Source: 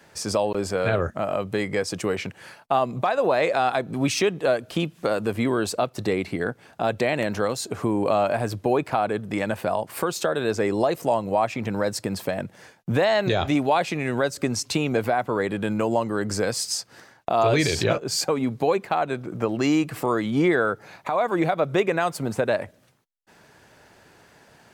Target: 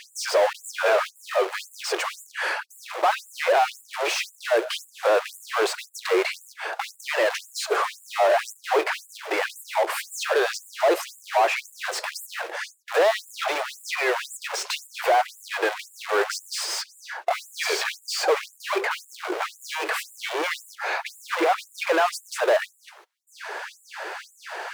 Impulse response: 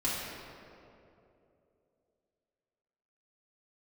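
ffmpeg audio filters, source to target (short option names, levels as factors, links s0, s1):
-filter_complex "[0:a]acrusher=bits=4:mode=log:mix=0:aa=0.000001,asplit=2[s0][s1];[s1]highpass=f=720:p=1,volume=44.7,asoftclip=type=tanh:threshold=0.282[s2];[s0][s2]amix=inputs=2:normalize=0,lowpass=f=1400:p=1,volume=0.501,afftfilt=real='re*gte(b*sr/1024,310*pow(7100/310,0.5+0.5*sin(2*PI*1.9*pts/sr)))':imag='im*gte(b*sr/1024,310*pow(7100/310,0.5+0.5*sin(2*PI*1.9*pts/sr)))':win_size=1024:overlap=0.75"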